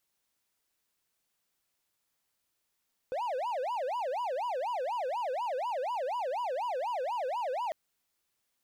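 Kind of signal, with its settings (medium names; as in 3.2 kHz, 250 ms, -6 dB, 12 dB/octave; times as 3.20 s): siren wail 497–991 Hz 4.1 per s triangle -28.5 dBFS 4.60 s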